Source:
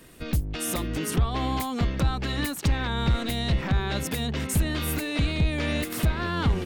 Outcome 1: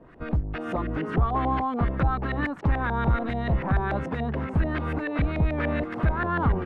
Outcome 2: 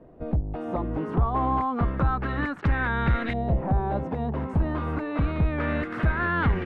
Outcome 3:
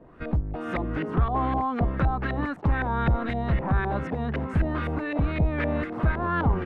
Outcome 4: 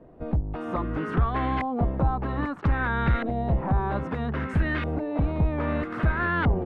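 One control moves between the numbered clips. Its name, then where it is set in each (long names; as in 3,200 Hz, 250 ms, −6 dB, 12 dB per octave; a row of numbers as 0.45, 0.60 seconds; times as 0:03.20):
auto-filter low-pass, speed: 6.9, 0.3, 3.9, 0.62 Hertz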